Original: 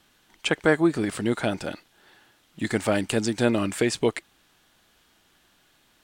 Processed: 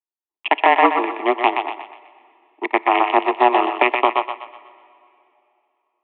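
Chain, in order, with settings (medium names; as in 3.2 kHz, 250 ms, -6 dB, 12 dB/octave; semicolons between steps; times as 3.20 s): local Wiener filter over 41 samples; de-esser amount 60%; power-law waveshaper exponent 2; static phaser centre 1.4 kHz, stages 6; compression 2.5:1, threshold -34 dBFS, peak gain reduction 8 dB; on a send at -22.5 dB: reverberation RT60 3.0 s, pre-delay 5 ms; on the sum: mistuned SSB +130 Hz 180–2800 Hz; peaking EQ 1 kHz +5.5 dB 0.84 oct; thinning echo 124 ms, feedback 43%, high-pass 430 Hz, level -6 dB; loudness maximiser +25 dB; trim -1 dB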